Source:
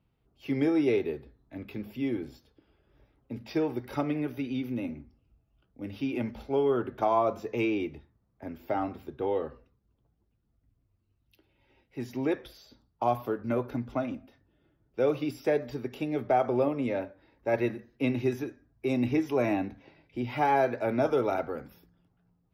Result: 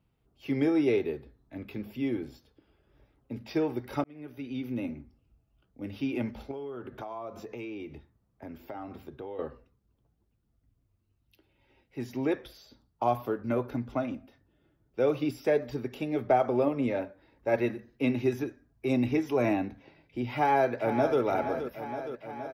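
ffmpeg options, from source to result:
-filter_complex "[0:a]asettb=1/sr,asplit=3[s0][s1][s2];[s0]atrim=end=6.514[s3];[s1]atrim=start=6.51:end=9.39,asetpts=PTS-STARTPTS,afade=t=in:d=0.004:c=qsin,afade=t=out:st=2.876:d=0.004:c=qsin,acompressor=threshold=0.0141:ratio=5:attack=3.2:release=140:knee=1:detection=peak[s4];[s2]atrim=start=9.386[s5];[s3][s4]acrossfade=d=0.004:c1=hsin:c2=qsin[s6];[s6][s5]acrossfade=d=0.004:c1=qsin:c2=hsin,asplit=3[s7][s8][s9];[s7]afade=t=out:st=15.16:d=0.02[s10];[s8]aphaser=in_gain=1:out_gain=1:delay=4.9:decay=0.21:speed=1.9:type=sinusoidal,afade=t=in:st=15.16:d=0.02,afade=t=out:st=19.52:d=0.02[s11];[s9]afade=t=in:st=19.52:d=0.02[s12];[s10][s11][s12]amix=inputs=3:normalize=0,asplit=2[s13][s14];[s14]afade=t=in:st=20.32:d=0.01,afade=t=out:st=21.21:d=0.01,aecho=0:1:470|940|1410|1880|2350|2820|3290|3760|4230|4700|5170|5640:0.316228|0.237171|0.177878|0.133409|0.100056|0.0750423|0.0562817|0.0422113|0.0316585|0.0237439|0.0178079|0.0133559[s15];[s13][s15]amix=inputs=2:normalize=0,asplit=2[s16][s17];[s16]atrim=end=4.04,asetpts=PTS-STARTPTS,afade=t=out:st=4.036:d=0.004:c=hsin[s18];[s17]atrim=start=4.04,asetpts=PTS-STARTPTS,afade=t=in:d=0.75[s19];[s18][s19]concat=n=2:v=0:a=1"

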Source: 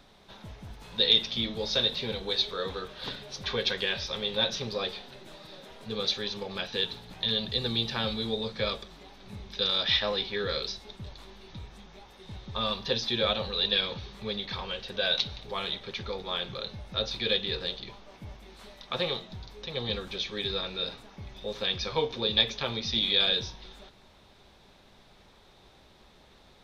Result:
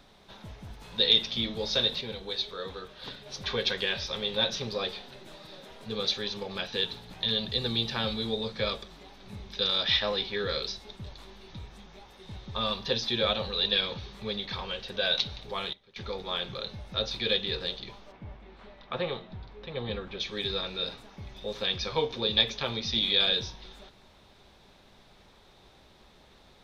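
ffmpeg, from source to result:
-filter_complex "[0:a]asplit=3[s0][s1][s2];[s0]afade=t=out:st=18.11:d=0.02[s3];[s1]lowpass=2400,afade=t=in:st=18.11:d=0.02,afade=t=out:st=20.19:d=0.02[s4];[s2]afade=t=in:st=20.19:d=0.02[s5];[s3][s4][s5]amix=inputs=3:normalize=0,asplit=5[s6][s7][s8][s9][s10];[s6]atrim=end=2.012[s11];[s7]atrim=start=2.008:end=3.262,asetpts=PTS-STARTPTS,volume=0.596[s12];[s8]atrim=start=3.258:end=15.73,asetpts=PTS-STARTPTS,afade=t=out:st=12.172:d=0.3:c=log:silence=0.1[s13];[s9]atrim=start=15.73:end=15.96,asetpts=PTS-STARTPTS,volume=0.1[s14];[s10]atrim=start=15.96,asetpts=PTS-STARTPTS,afade=t=in:d=0.3:c=log:silence=0.1[s15];[s11][s12]acrossfade=d=0.004:c1=hsin:c2=hsin[s16];[s13][s14][s15]concat=n=3:v=0:a=1[s17];[s16][s17]acrossfade=d=0.004:c1=hsin:c2=hsin"

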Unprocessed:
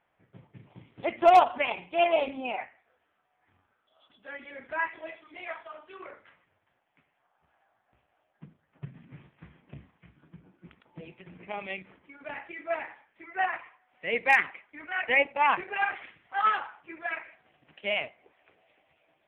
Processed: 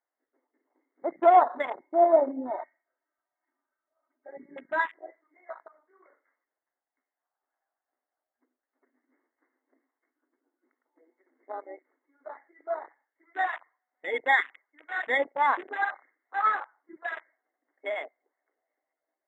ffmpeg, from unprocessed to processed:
-filter_complex "[0:a]asettb=1/sr,asplit=3[s0][s1][s2];[s0]atrim=end=1.844[s3];[s1]atrim=start=1.84:end=4.82,asetpts=PTS-STARTPTS,afade=t=in:d=0.004:c=qsin,afade=t=out:st=2.976:d=0.004:c=qsin,aecho=1:1:3.2:0.97,atrim=end_sample=131418[s4];[s2]atrim=start=4.816[s5];[s3][s4]acrossfade=d=0.004:c1=hsin:c2=qsin[s6];[s6][s5]acrossfade=d=0.004:c1=qsin:c2=hsin,asettb=1/sr,asplit=3[s7][s8][s9];[s7]atrim=end=13.414[s10];[s8]atrim=start=13.41:end=15.05,asetpts=PTS-STARTPTS,afade=t=in:d=0.004:c=qsin,afade=t=out:st=1.636:d=0.004:c=qsin,asuperstop=centerf=4700:order=20:qfactor=1.6[s11];[s9]atrim=start=15.046[s12];[s10][s11]acrossfade=d=0.004:c1=hsin:c2=qsin[s13];[s13][s12]acrossfade=d=0.004:c1=qsin:c2=hsin,afftfilt=real='re*between(b*sr/4096,240,2200)':imag='im*between(b*sr/4096,240,2200)':win_size=4096:overlap=0.75,afwtdn=0.0178"

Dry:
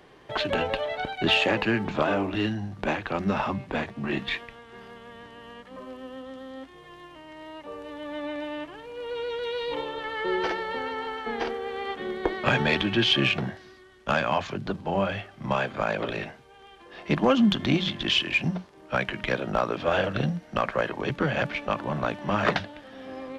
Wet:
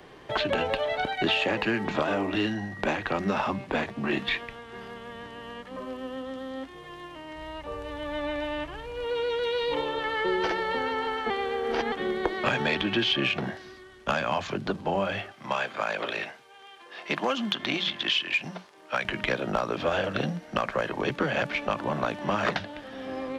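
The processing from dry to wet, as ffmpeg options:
-filter_complex "[0:a]asettb=1/sr,asplit=3[s0][s1][s2];[s0]atrim=end=1.114[s3];[s1]atrim=start=1.11:end=3.29,asetpts=PTS-STARTPTS,afade=t=in:d=0.004:c=qsin,afade=t=out:st=2.176:d=0.004:c=qsin,aeval=exprs='val(0)+0.00562*sin(2*PI*1900*n/s)':c=same[s4];[s2]atrim=start=3.286[s5];[s3][s4]acrossfade=d=0.004:c1=hsin:c2=qsin[s6];[s6][s5]acrossfade=d=0.004:c1=qsin:c2=hsin,asplit=3[s7][s8][s9];[s7]afade=t=out:st=7.35:d=0.02[s10];[s8]asubboost=boost=7:cutoff=90,afade=t=in:st=7.35:d=0.02,afade=t=out:st=9.03:d=0.02[s11];[s9]afade=t=in:st=9.03:d=0.02[s12];[s10][s11][s12]amix=inputs=3:normalize=0,asettb=1/sr,asplit=3[s13][s14][s15];[s13]atrim=end=15.324[s16];[s14]atrim=start=15.32:end=19.05,asetpts=PTS-STARTPTS,afade=t=in:d=0.004:c=qsin,afade=t=out:st=3.726:d=0.004:c=qsin,highpass=f=910:p=1[s17];[s15]atrim=start=19.046[s18];[s16][s17]acrossfade=d=0.004:c1=hsin:c2=qsin[s19];[s19][s18]acrossfade=d=0.004:c1=qsin:c2=hsin,asplit=3[s20][s21][s22];[s20]atrim=end=11.302[s23];[s21]atrim=start=11.298:end=11.922,asetpts=PTS-STARTPTS,areverse[s24];[s22]atrim=start=11.918[s25];[s23][s24]acrossfade=d=0.004:c1=hsin:c2=hsin[s26];[s26][s25]acrossfade=d=0.004:c1=hsin:c2=hsin,acrossover=split=210|4600[s27][s28][s29];[s27]acompressor=threshold=0.00631:ratio=4[s30];[s28]acompressor=threshold=0.0398:ratio=4[s31];[s29]acompressor=threshold=0.00398:ratio=4[s32];[s30][s31][s32]amix=inputs=3:normalize=0,volume=1.58"

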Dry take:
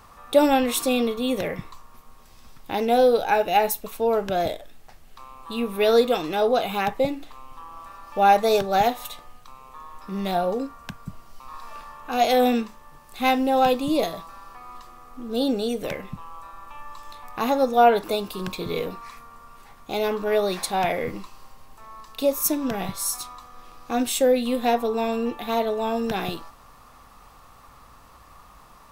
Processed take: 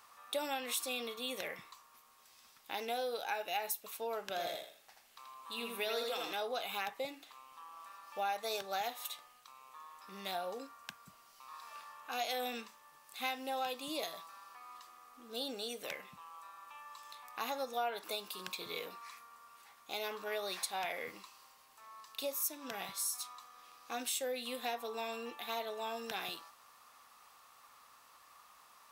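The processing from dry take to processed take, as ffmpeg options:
-filter_complex "[0:a]asettb=1/sr,asplit=3[s0][s1][s2];[s0]atrim=end=4.234[s3];[s1]atrim=start=4.23:end=6.33,asetpts=PTS-STARTPTS,afade=t=in:d=0.004:c=qsin,afade=t=out:st=2.096:d=0.004:c=qsin,aecho=1:1:81|162|243|324:0.631|0.183|0.0531|0.0154,atrim=end_sample=92610[s4];[s2]atrim=start=6.326[s5];[s3][s4]acrossfade=d=0.004:c1=hsin:c2=qsin[s6];[s6][s5]acrossfade=d=0.004:c1=qsin:c2=hsin,lowpass=f=1800:p=1,aderivative,acompressor=threshold=0.00794:ratio=3,volume=2.24"

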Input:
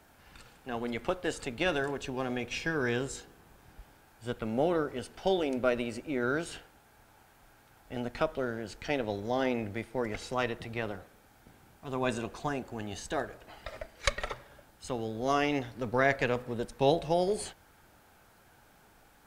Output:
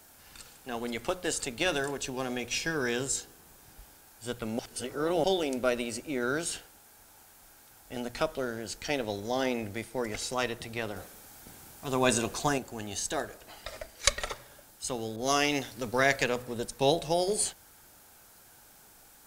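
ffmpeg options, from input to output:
-filter_complex "[0:a]asettb=1/sr,asplit=3[s0][s1][s2];[s0]atrim=end=10.964[s3];[s1]atrim=start=10.96:end=12.58,asetpts=PTS-STARTPTS,afade=t=in:d=0.004:c=qsin,afade=t=out:st=1.616:d=0.004:c=qsin,acontrast=31[s4];[s2]atrim=start=12.576[s5];[s3][s4]acrossfade=d=0.004:c1=hsin:c2=qsin[s6];[s6][s5]acrossfade=d=0.004:c1=qsin:c2=hsin,asettb=1/sr,asplit=3[s7][s8][s9];[s7]atrim=end=15.164[s10];[s8]atrim=start=15.16:end=16.24,asetpts=PTS-STARTPTS,afade=t=in:d=0.004:c=qsin,afade=t=out:st=1.076:d=0.004:c=qsin,adynamicequalizer=threshold=0.00891:dfrequency=1800:dqfactor=0.7:tfrequency=1800:tqfactor=0.7:attack=5:release=100:ratio=0.375:range=2:mode=boostabove:tftype=highshelf[s11];[s9]atrim=start=16.236[s12];[s10][s11]acrossfade=d=0.004:c1=hsin:c2=qsin[s13];[s13][s12]acrossfade=d=0.004:c1=qsin:c2=hsin,asplit=3[s14][s15][s16];[s14]atrim=end=4.592[s17];[s15]atrim=start=4.588:end=5.242,asetpts=PTS-STARTPTS,areverse[s18];[s16]atrim=start=5.238[s19];[s17][s18]acrossfade=d=0.004:c1=hsin:c2=hsin[s20];[s20][s19]acrossfade=d=0.004:c1=hsin:c2=hsin,bass=f=250:g=-1,treble=f=4000:g=13,bandreject=f=60:t=h:w=6,bandreject=f=120:t=h:w=6,bandreject=f=180:t=h:w=6"

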